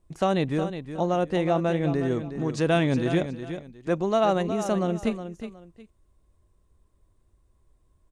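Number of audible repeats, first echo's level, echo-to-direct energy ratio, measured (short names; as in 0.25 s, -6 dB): 2, -10.0 dB, -9.5 dB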